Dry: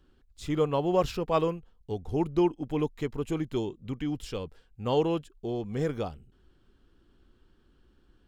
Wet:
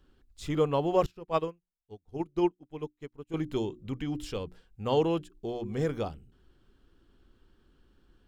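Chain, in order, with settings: notches 60/120/180/240/300/360 Hz; 1.06–3.34 upward expander 2.5:1, over -45 dBFS

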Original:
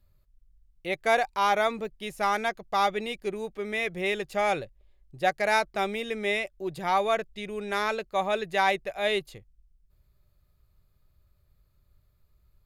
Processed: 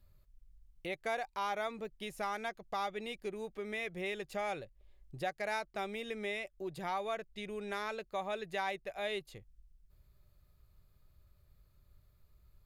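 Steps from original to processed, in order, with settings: compressor 2:1, threshold -44 dBFS, peak gain reduction 14 dB

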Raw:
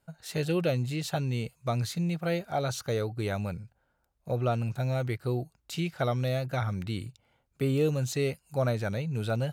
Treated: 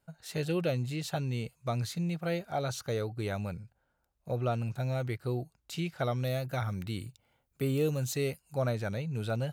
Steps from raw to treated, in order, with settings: 6.24–8.42 high shelf 11000 Hz +11.5 dB; gain -3 dB

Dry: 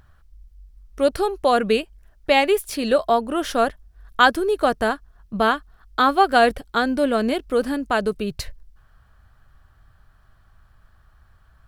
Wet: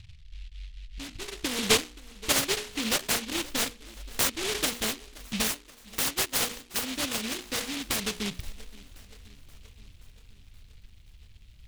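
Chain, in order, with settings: Wiener smoothing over 41 samples; 5.47–7.84 low shelf 420 Hz -9 dB; notches 60/120/180/240/300/360/420/480 Hz; compressor 2:1, threshold -39 dBFS, peak gain reduction 16 dB; low-pass sweep 130 Hz -> 12000 Hz, 0.91–3.84; darkening echo 0.526 s, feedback 61%, low-pass 4800 Hz, level -21 dB; noise-modulated delay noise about 3000 Hz, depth 0.45 ms; gain +3.5 dB

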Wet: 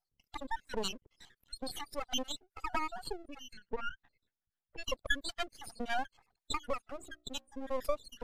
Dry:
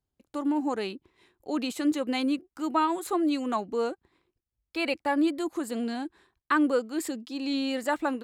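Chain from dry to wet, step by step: random spectral dropouts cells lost 77%; 6.79–7.62 notches 60/120/180/240/300/360/420/480/540 Hz; spectral gate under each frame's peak -15 dB strong; tilt shelf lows -5 dB, about 640 Hz; compressor 12:1, threshold -35 dBFS, peak gain reduction 16.5 dB; fixed phaser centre 1600 Hz, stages 8; half-wave rectifier; 3.53–4.84 tape spacing loss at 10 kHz 22 dB; gain +13 dB; MP3 96 kbps 32000 Hz

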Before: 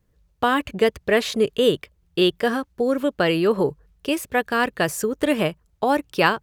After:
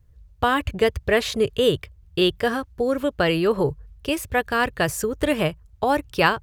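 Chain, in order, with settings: resonant low shelf 140 Hz +11.5 dB, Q 1.5

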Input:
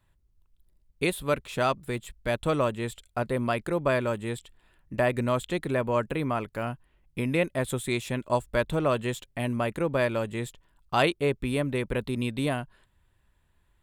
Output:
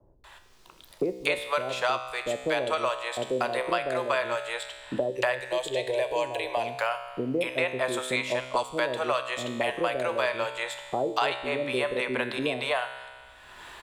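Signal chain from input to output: three-band isolator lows -22 dB, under 450 Hz, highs -15 dB, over 6800 Hz; 5.1–6.49 fixed phaser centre 540 Hz, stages 4; bell 1800 Hz -3.5 dB 1.7 oct; bands offset in time lows, highs 0.24 s, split 520 Hz; AGC gain up to 7 dB; resonator 64 Hz, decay 0.88 s, harmonics all, mix 70%; three-band squash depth 100%; gain +7 dB

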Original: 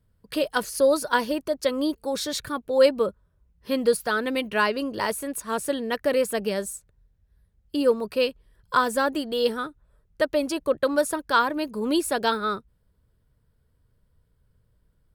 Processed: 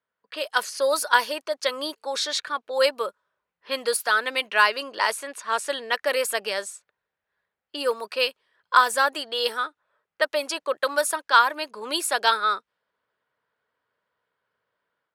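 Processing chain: low-pass opened by the level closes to 2400 Hz, open at -19 dBFS; AGC gain up to 7 dB; HPF 870 Hz 12 dB/oct

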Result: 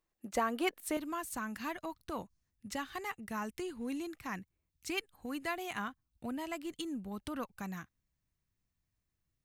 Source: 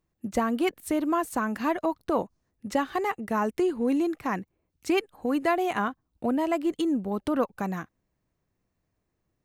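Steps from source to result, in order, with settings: bell 110 Hz -14.5 dB 2.9 oct, from 0.97 s 490 Hz; gain -2.5 dB

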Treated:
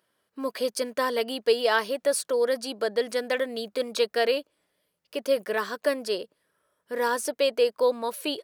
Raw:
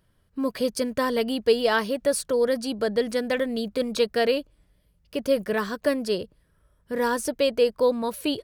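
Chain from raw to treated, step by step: HPF 400 Hz 12 dB/oct

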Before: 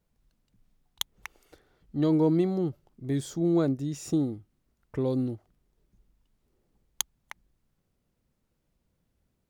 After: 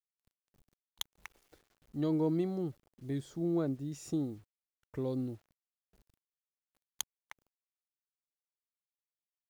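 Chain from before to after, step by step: 3.18–3.92 high shelf 4000 Hz -9.5 dB; bit-crush 10-bit; gain -7.5 dB

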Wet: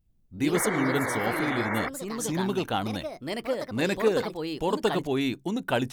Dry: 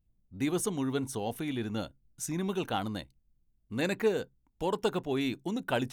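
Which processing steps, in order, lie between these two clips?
echoes that change speed 92 ms, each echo +3 st, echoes 2, each echo -6 dB; painted sound noise, 0.54–1.89, 270–2300 Hz -35 dBFS; gain +4 dB

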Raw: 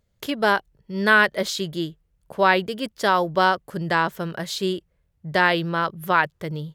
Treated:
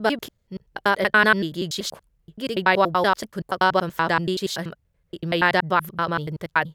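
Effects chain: slices in reverse order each 95 ms, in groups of 5

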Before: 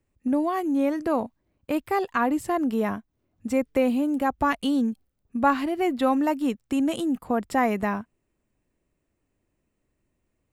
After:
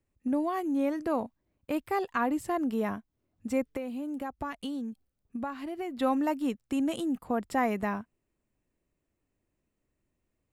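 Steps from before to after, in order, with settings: 3.7–5.97 compressor 6:1, threshold -28 dBFS, peak gain reduction 12.5 dB; gain -5 dB

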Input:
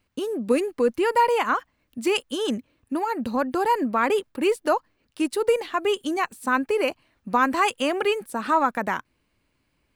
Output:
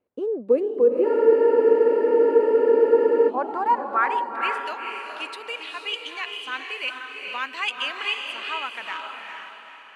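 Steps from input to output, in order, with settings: band-pass sweep 480 Hz -> 2900 Hz, 2.84–4.74; diffused feedback echo 0.457 s, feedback 43%, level -3.5 dB; spectral freeze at 1.06, 2.23 s; gain +4 dB

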